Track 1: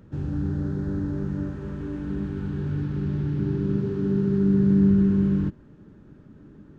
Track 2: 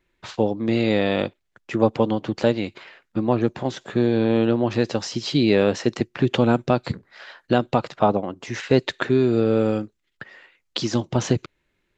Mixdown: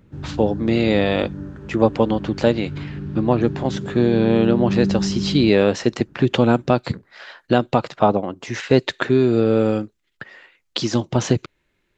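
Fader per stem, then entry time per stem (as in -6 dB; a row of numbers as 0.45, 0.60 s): -3.0, +2.5 dB; 0.00, 0.00 s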